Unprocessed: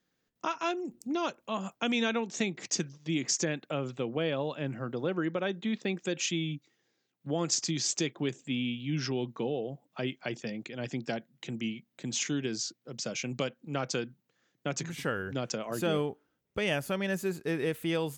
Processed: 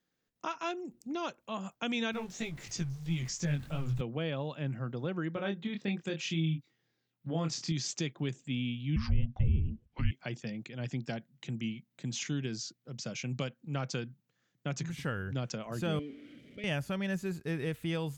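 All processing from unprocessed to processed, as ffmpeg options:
-filter_complex "[0:a]asettb=1/sr,asplit=3[s0][s1][s2];[s0]atrim=end=2.124[s3];[s1]atrim=start=2.12:end=4.01,asetpts=PTS-STARTPTS,afade=t=in:d=0.004:c=qsin,afade=t=out:st=1.886:d=0.004:c=qsin,aeval=exprs='val(0)+0.5*0.0075*sgn(val(0))':c=same,asubboost=boost=12:cutoff=130,flanger=delay=17:depth=5.7:speed=3[s4];[s2]atrim=start=4.006[s5];[s3][s4]acrossfade=d=0.004:c1=hsin:c2=qsin[s6];[s6][s5]acrossfade=d=0.004:c1=qsin:c2=hsin,asettb=1/sr,asplit=3[s7][s8][s9];[s7]atrim=end=5.344[s10];[s8]atrim=start=5.34:end=7.72,asetpts=PTS-STARTPTS,afade=t=in:d=0.004:c=qsin,afade=t=out:st=2.376:d=0.004:c=qsin,equalizer=f=6800:t=o:w=0.57:g=-7.5,asplit=2[s11][s12];[s12]adelay=25,volume=0.562[s13];[s11][s13]amix=inputs=2:normalize=0,atrim=end_sample=104958[s14];[s9]atrim=start=7.716[s15];[s10][s14]acrossfade=d=0.004:c1=hsin:c2=qsin[s16];[s16][s15]acrossfade=d=0.004:c1=qsin:c2=hsin,asettb=1/sr,asplit=3[s17][s18][s19];[s17]atrim=end=8.964[s20];[s18]atrim=start=8.96:end=10.11,asetpts=PTS-STARTPTS,afade=t=in:d=0.004:c=qsin,afade=t=out:st=1.146:d=0.004:c=qsin,lowpass=4300,afreqshift=-360[s21];[s19]atrim=start=10.106[s22];[s20][s21]acrossfade=d=0.004:c1=hsin:c2=qsin[s23];[s23][s22]acrossfade=d=0.004:c1=qsin:c2=hsin,asettb=1/sr,asplit=3[s24][s25][s26];[s24]atrim=end=15.994[s27];[s25]atrim=start=15.99:end=16.64,asetpts=PTS-STARTPTS,afade=t=in:d=0.004:c=qsin,afade=t=out:st=0.646:d=0.004:c=qsin,aeval=exprs='val(0)+0.5*0.0224*sgn(val(0))':c=same,asplit=3[s28][s29][s30];[s28]bandpass=f=270:t=q:w=8,volume=1[s31];[s29]bandpass=f=2290:t=q:w=8,volume=0.501[s32];[s30]bandpass=f=3010:t=q:w=8,volume=0.355[s33];[s31][s32][s33]amix=inputs=3:normalize=0,equalizer=f=610:t=o:w=0.97:g=15[s34];[s26]atrim=start=16.636[s35];[s27][s34]acrossfade=d=0.004:c1=hsin:c2=qsin[s36];[s36][s35]acrossfade=d=0.004:c1=qsin:c2=hsin,acrossover=split=7200[s37][s38];[s38]acompressor=threshold=0.00224:ratio=4:attack=1:release=60[s39];[s37][s39]amix=inputs=2:normalize=0,asubboost=boost=3.5:cutoff=170,volume=0.631"

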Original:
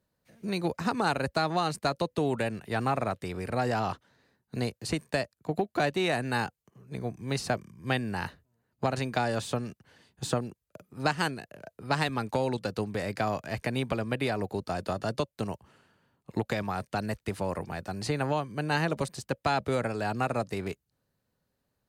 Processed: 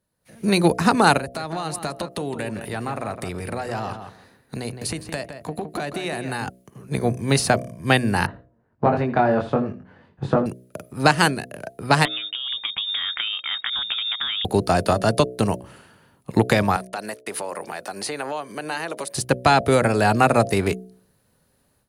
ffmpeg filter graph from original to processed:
-filter_complex "[0:a]asettb=1/sr,asplit=3[s0][s1][s2];[s0]atrim=end=1.184[s3];[s1]atrim=start=1.18:end=6.47,asetpts=PTS-STARTPTS,afade=t=in:d=0.004:c=qsin,afade=t=out:st=5.286:d=0.004:c=qsin,acompressor=threshold=0.00708:ratio=3:attack=3.2:release=140:knee=1:detection=peak,asplit=2[s4][s5];[s5]adelay=164,lowpass=f=2500:p=1,volume=0.398,asplit=2[s6][s7];[s7]adelay=164,lowpass=f=2500:p=1,volume=0.17,asplit=2[s8][s9];[s9]adelay=164,lowpass=f=2500:p=1,volume=0.17[s10];[s4][s6][s8][s10]amix=inputs=4:normalize=0,atrim=end_sample=233289[s11];[s2]atrim=start=6.466[s12];[s3][s11]acrossfade=d=0.004:c1=hsin:c2=qsin[s13];[s13][s12]acrossfade=d=0.004:c1=qsin:c2=hsin,asettb=1/sr,asplit=3[s14][s15][s16];[s14]atrim=end=8.264[s17];[s15]atrim=start=8.26:end=10.46,asetpts=PTS-STARTPTS,afade=t=in:d=0.004:c=qsin,afade=t=out:st=2.196:d=0.004:c=qsin,lowpass=1400,flanger=delay=20:depth=2.4:speed=1.4,aecho=1:1:81:0.168,atrim=end_sample=97020[s18];[s16]atrim=start=10.456[s19];[s17][s18]acrossfade=d=0.004:c1=hsin:c2=qsin[s20];[s20][s19]acrossfade=d=0.004:c1=qsin:c2=hsin,asettb=1/sr,asplit=3[s21][s22][s23];[s21]atrim=end=12.054[s24];[s22]atrim=start=12.05:end=14.45,asetpts=PTS-STARTPTS,afade=t=in:d=0.004:c=qsin,afade=t=out:st=2.396:d=0.004:c=qsin,acompressor=threshold=0.0178:ratio=20:attack=3.2:release=140:knee=1:detection=peak,acrusher=bits=7:mode=log:mix=0:aa=0.000001,lowpass=f=3200:t=q:w=0.5098,lowpass=f=3200:t=q:w=0.6013,lowpass=f=3200:t=q:w=0.9,lowpass=f=3200:t=q:w=2.563,afreqshift=-3800[s25];[s23]atrim=start=14.446[s26];[s24][s25]acrossfade=d=0.004:c1=hsin:c2=qsin[s27];[s27][s26]acrossfade=d=0.004:c1=qsin:c2=hsin,asettb=1/sr,asplit=3[s28][s29][s30];[s28]atrim=end=16.764[s31];[s29]atrim=start=16.76:end=19.15,asetpts=PTS-STARTPTS,afade=t=in:d=0.004:c=qsin,afade=t=out:st=2.386:d=0.004:c=qsin,agate=range=0.0224:threshold=0.00398:ratio=3:release=100:detection=peak,highpass=380,acompressor=threshold=0.00631:ratio=2.5:attack=3.2:release=140:knee=1:detection=peak[s32];[s30]atrim=start=19.146[s33];[s31][s32]acrossfade=d=0.004:c1=hsin:c2=qsin[s34];[s34][s33]acrossfade=d=0.004:c1=qsin:c2=hsin,equalizer=f=10000:w=6:g=14.5,bandreject=f=62.47:t=h:w=4,bandreject=f=124.94:t=h:w=4,bandreject=f=187.41:t=h:w=4,bandreject=f=249.88:t=h:w=4,bandreject=f=312.35:t=h:w=4,bandreject=f=374.82:t=h:w=4,bandreject=f=437.29:t=h:w=4,bandreject=f=499.76:t=h:w=4,bandreject=f=562.23:t=h:w=4,bandreject=f=624.7:t=h:w=4,bandreject=f=687.17:t=h:w=4,dynaudnorm=f=200:g=3:m=5.01"

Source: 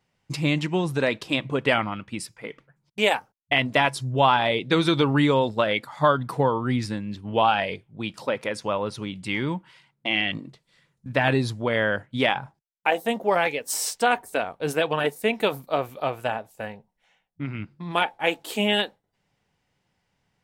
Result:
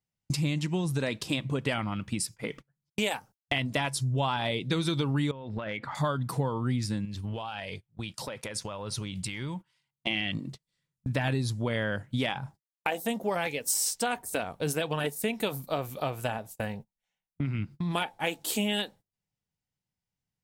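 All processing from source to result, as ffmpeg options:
-filter_complex "[0:a]asettb=1/sr,asplit=3[s0][s1][s2];[s0]atrim=end=5.314[s3];[s1]atrim=start=5.31:end=5.95,asetpts=PTS-STARTPTS,afade=t=in:d=0.004:c=qsin,afade=t=out:st=0.636:d=0.004:c=qsin,lowpass=f=2100:t=q:w=1.5,acompressor=threshold=0.0251:ratio=8:attack=3.2:release=140:knee=1:detection=peak[s4];[s2]atrim=start=5.946[s5];[s3][s4]acrossfade=d=0.004:c1=hsin:c2=qsin[s6];[s6][s5]acrossfade=d=0.004:c1=qsin:c2=hsin,asettb=1/sr,asplit=3[s7][s8][s9];[s7]atrim=end=7.054[s10];[s8]atrim=start=7.05:end=10.07,asetpts=PTS-STARTPTS,afade=t=in:d=0.004:c=qsin,afade=t=out:st=3.016:d=0.004:c=qsin,equalizer=f=240:t=o:w=1.7:g=-6.5,acompressor=threshold=0.0126:ratio=5:attack=3.2:release=140:knee=1:detection=peak[s11];[s9]atrim=start=10.066[s12];[s10][s11]acrossfade=d=0.004:c1=hsin:c2=qsin[s13];[s13][s12]acrossfade=d=0.004:c1=qsin:c2=hsin,agate=range=0.0562:threshold=0.00562:ratio=16:detection=peak,bass=f=250:g=9,treble=f=4000:g=11,acompressor=threshold=0.0251:ratio=3,volume=1.26"

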